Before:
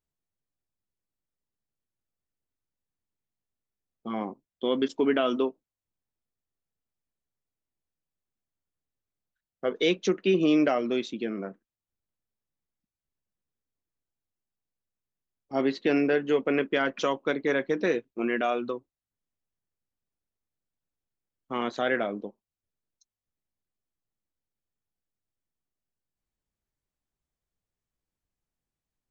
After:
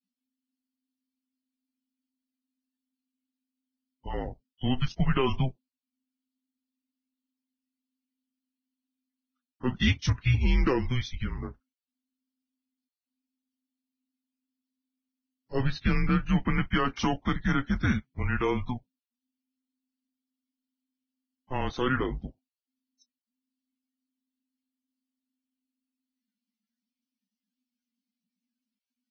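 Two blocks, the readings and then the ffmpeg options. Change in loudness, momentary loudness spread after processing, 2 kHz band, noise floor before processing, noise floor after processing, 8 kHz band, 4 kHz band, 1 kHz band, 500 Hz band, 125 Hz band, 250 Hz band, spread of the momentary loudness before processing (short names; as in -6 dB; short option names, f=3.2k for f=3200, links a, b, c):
-1.5 dB, 12 LU, -1.0 dB, under -85 dBFS, under -85 dBFS, n/a, 0.0 dB, -0.5 dB, -8.5 dB, +14.5 dB, -1.5 dB, 12 LU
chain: -af "afreqshift=-260" -ar 16000 -c:a libvorbis -b:a 16k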